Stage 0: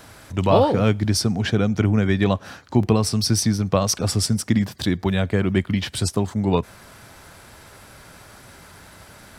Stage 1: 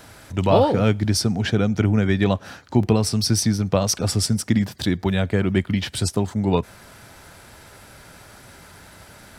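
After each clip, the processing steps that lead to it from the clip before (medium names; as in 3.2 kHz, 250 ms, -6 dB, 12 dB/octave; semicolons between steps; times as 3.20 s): band-stop 1.1 kHz, Q 14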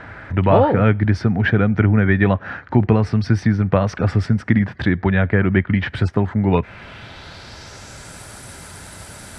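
peaking EQ 87 Hz +3.5 dB 2 oct; in parallel at +1.5 dB: compression, threshold -25 dBFS, peak gain reduction 14.5 dB; on the sum: low-pass sweep 1.8 kHz -> 9.2 kHz, 6.38–8.22 s; trim -1 dB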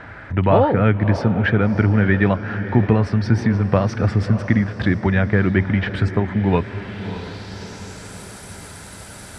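echo that smears into a reverb 619 ms, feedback 51%, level -11.5 dB; trim -1 dB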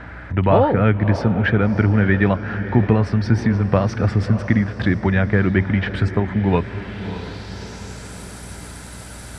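hum 60 Hz, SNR 20 dB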